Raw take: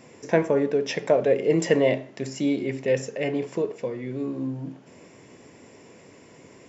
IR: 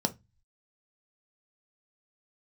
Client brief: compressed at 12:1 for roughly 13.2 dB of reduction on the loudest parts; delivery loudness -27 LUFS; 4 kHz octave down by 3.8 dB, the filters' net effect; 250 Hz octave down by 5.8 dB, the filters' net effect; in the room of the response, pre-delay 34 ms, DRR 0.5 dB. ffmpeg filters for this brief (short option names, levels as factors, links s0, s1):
-filter_complex "[0:a]equalizer=f=250:t=o:g=-7.5,equalizer=f=4000:t=o:g=-6,acompressor=threshold=0.0316:ratio=12,asplit=2[s0][s1];[1:a]atrim=start_sample=2205,adelay=34[s2];[s1][s2]afir=irnorm=-1:irlink=0,volume=0.447[s3];[s0][s3]amix=inputs=2:normalize=0,volume=1.58"